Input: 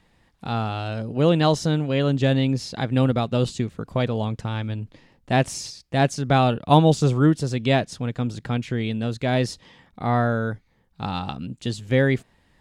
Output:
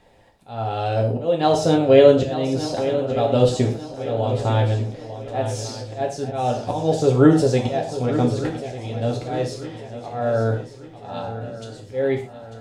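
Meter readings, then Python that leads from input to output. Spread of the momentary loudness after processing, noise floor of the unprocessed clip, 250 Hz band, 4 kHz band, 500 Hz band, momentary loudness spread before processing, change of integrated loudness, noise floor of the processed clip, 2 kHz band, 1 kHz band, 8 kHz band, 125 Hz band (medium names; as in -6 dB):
17 LU, -63 dBFS, +0.5 dB, -2.0 dB, +6.0 dB, 12 LU, +2.0 dB, -42 dBFS, -4.5 dB, 0.0 dB, 0.0 dB, -1.0 dB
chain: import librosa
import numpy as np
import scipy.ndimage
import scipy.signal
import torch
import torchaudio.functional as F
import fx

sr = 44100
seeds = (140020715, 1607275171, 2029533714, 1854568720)

y = fx.band_shelf(x, sr, hz=570.0, db=10.0, octaves=1.3)
y = fx.auto_swell(y, sr, attack_ms=589.0)
y = fx.echo_swing(y, sr, ms=1194, ratio=3, feedback_pct=41, wet_db=-11.5)
y = fx.rev_gated(y, sr, seeds[0], gate_ms=150, shape='falling', drr_db=0.0)
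y = y * librosa.db_to_amplitude(1.0)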